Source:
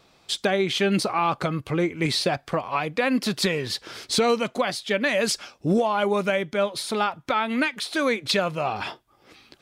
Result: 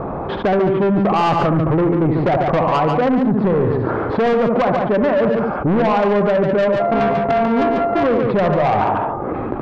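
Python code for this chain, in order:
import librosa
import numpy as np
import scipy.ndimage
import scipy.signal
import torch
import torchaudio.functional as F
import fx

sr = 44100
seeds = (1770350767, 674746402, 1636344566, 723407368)

p1 = fx.sample_sort(x, sr, block=64, at=(6.79, 8.03), fade=0.02)
p2 = scipy.signal.sosfilt(scipy.signal.butter(4, 1100.0, 'lowpass', fs=sr, output='sos'), p1)
p3 = fx.rider(p2, sr, range_db=10, speed_s=0.5)
p4 = p2 + F.gain(torch.from_numpy(p3), -2.5).numpy()
p5 = p4 + 10.0 ** (-10.0 / 20.0) * np.pad(p4, (int(73 * sr / 1000.0), 0))[:len(p4)]
p6 = 10.0 ** (-20.5 / 20.0) * np.tanh(p5 / 10.0 ** (-20.5 / 20.0))
p7 = p6 + fx.echo_single(p6, sr, ms=143, db=-8.5, dry=0)
p8 = fx.env_flatten(p7, sr, amount_pct=70)
y = F.gain(torch.from_numpy(p8), 6.5).numpy()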